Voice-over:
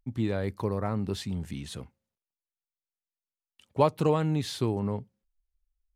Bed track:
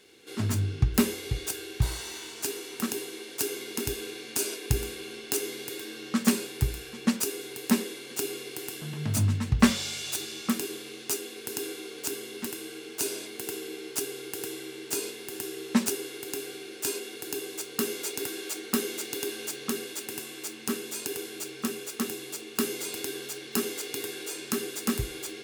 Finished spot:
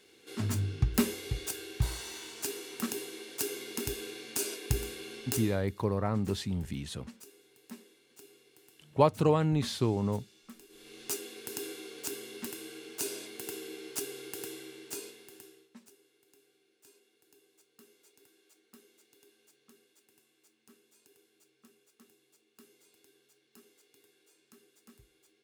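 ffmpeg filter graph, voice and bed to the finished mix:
-filter_complex "[0:a]adelay=5200,volume=-0.5dB[a];[1:a]volume=14.5dB,afade=t=out:st=5.29:d=0.36:silence=0.105925,afade=t=in:st=10.69:d=0.41:silence=0.11885,afade=t=out:st=14.39:d=1.31:silence=0.0530884[b];[a][b]amix=inputs=2:normalize=0"

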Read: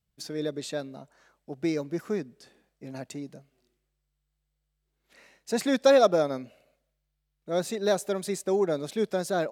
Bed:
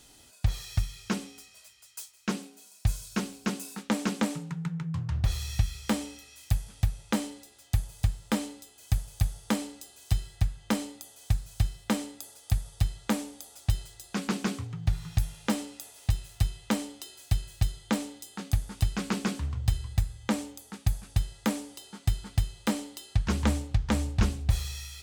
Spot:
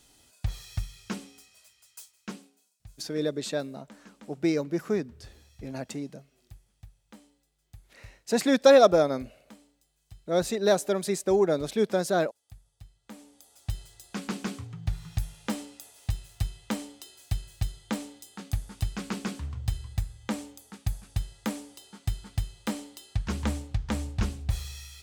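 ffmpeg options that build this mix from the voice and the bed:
-filter_complex "[0:a]adelay=2800,volume=2.5dB[a];[1:a]volume=15.5dB,afade=t=out:st=1.95:d=0.82:silence=0.112202,afade=t=in:st=13.03:d=0.95:silence=0.1[b];[a][b]amix=inputs=2:normalize=0"

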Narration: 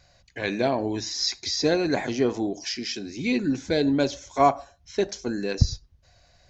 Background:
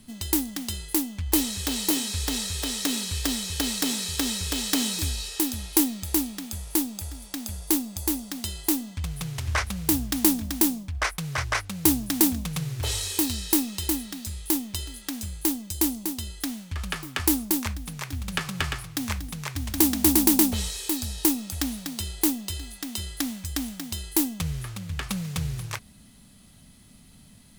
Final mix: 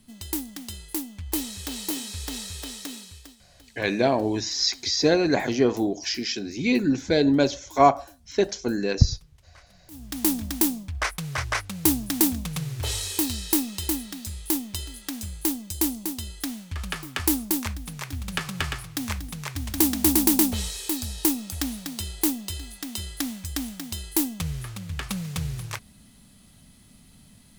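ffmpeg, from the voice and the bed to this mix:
-filter_complex "[0:a]adelay=3400,volume=2.5dB[a];[1:a]volume=22.5dB,afade=t=out:st=2.52:d=0.84:silence=0.0707946,afade=t=in:st=9.9:d=0.47:silence=0.0398107[b];[a][b]amix=inputs=2:normalize=0"

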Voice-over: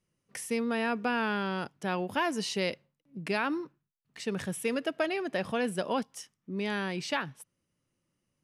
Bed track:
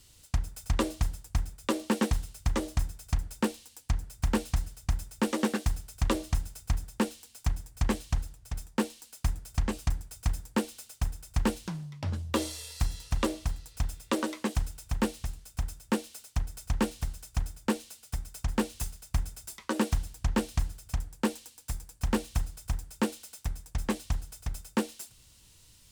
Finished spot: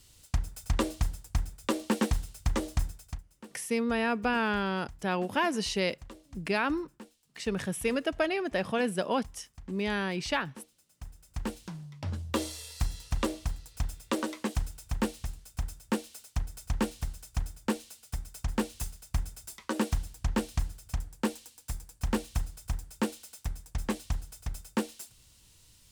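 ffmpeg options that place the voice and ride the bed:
-filter_complex "[0:a]adelay=3200,volume=1.5dB[a];[1:a]volume=18.5dB,afade=t=out:st=2.88:d=0.35:silence=0.1,afade=t=in:st=10.86:d=1.36:silence=0.112202[b];[a][b]amix=inputs=2:normalize=0"

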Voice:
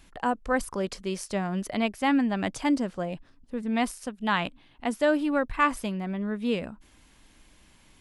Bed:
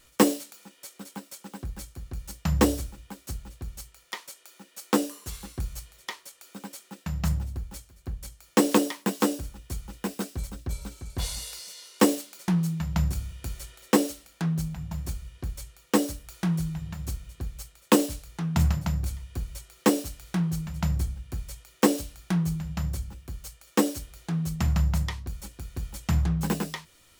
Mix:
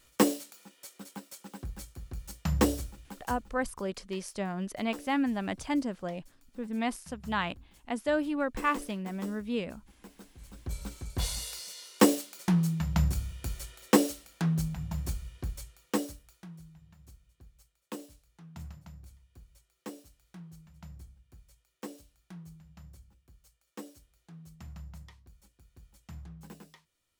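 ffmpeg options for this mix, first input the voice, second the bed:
-filter_complex "[0:a]adelay=3050,volume=-5dB[a];[1:a]volume=15dB,afade=t=out:st=3.26:d=0.28:silence=0.158489,afade=t=in:st=10.39:d=0.51:silence=0.112202,afade=t=out:st=15.27:d=1.19:silence=0.0944061[b];[a][b]amix=inputs=2:normalize=0"

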